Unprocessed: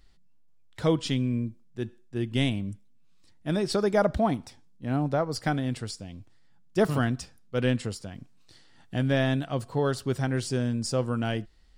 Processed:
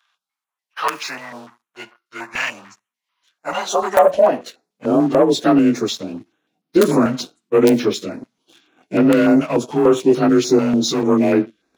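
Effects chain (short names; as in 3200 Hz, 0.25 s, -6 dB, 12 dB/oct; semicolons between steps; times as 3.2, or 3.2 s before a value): inharmonic rescaling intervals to 91%; wrapped overs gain 14.5 dB; on a send at -22 dB: reverb, pre-delay 4 ms; on the sum: spectral gain 3.69–4.1, 2100–5700 Hz -9 dB; sample leveller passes 2; high-pass sweep 1100 Hz -> 320 Hz, 3.07–5.21; in parallel at +2 dB: limiter -14.5 dBFS, peak gain reduction 8.5 dB; on the sum: dynamic EQ 2500 Hz, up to -4 dB, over -27 dBFS, Q 0.93; stepped notch 6.8 Hz 340–7400 Hz; gain +2 dB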